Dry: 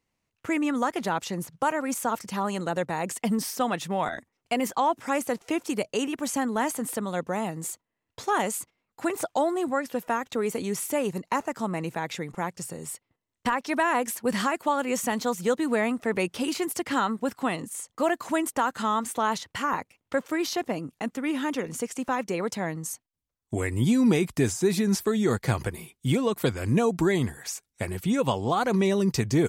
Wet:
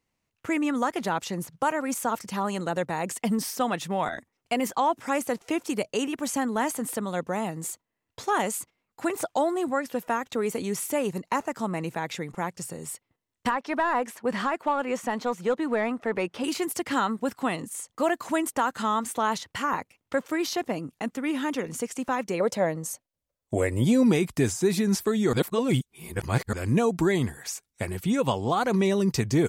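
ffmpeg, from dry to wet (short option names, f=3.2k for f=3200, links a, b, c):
-filter_complex "[0:a]asettb=1/sr,asplit=3[a][b][c];[a]atrim=end=13.514[d];[b]atrim=start=13.51:end=16.44,asetpts=PTS-STARTPTS,afade=t=in:d=0.004:c=qsin,afade=t=out:st=2.926:d=0.004:c=qsin,asplit=2[e][f];[f]highpass=f=720:p=1,volume=9dB,asoftclip=type=tanh:threshold=-13.5dB[g];[e][g]amix=inputs=2:normalize=0,lowpass=f=1.2k:p=1,volume=-6dB[h];[c]atrim=start=16.436[i];[d][h]acrossfade=d=0.004:c1=hsin:c2=qsin[j];[j][i]acrossfade=d=0.004:c1=qsin:c2=hsin,asettb=1/sr,asplit=3[k][l][m];[k]atrim=end=22.404[n];[l]atrim=start=22.4:end=24.03,asetpts=PTS-STARTPTS,afade=t=in:d=0.004:c=qsin,afade=t=out:st=1.626:d=0.004:c=qsin,equalizer=f=560:w=2.9:g=13.5[o];[m]atrim=start=24.026[p];[n][o]acrossfade=d=0.004:c1=hsin:c2=qsin[q];[q][p]acrossfade=d=0.004:c1=qsin:c2=hsin,asplit=3[r][s][t];[r]atrim=end=25.332[u];[s]atrim=start=25.328:end=26.532,asetpts=PTS-STARTPTS,areverse[v];[t]atrim=start=26.528[w];[u][v]acrossfade=d=0.004:c1=hsin:c2=hsin[x];[x][w]acrossfade=d=0.004:c1=hsin:c2=hsin"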